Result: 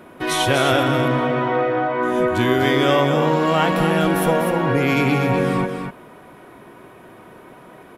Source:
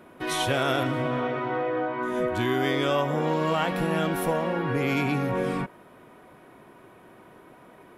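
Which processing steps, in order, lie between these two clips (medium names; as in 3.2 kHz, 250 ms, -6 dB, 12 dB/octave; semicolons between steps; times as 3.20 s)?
delay 247 ms -6.5 dB; trim +7 dB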